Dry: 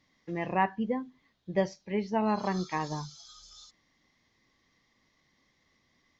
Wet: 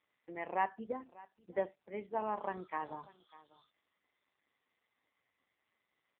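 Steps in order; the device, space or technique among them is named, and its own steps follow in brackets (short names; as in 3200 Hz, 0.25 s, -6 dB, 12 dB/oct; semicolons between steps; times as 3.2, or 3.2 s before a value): 0.92–2.8 low-pass opened by the level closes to 390 Hz, open at -25 dBFS; satellite phone (BPF 390–3000 Hz; echo 0.595 s -21 dB; gain -4.5 dB; AMR-NB 5.9 kbps 8000 Hz)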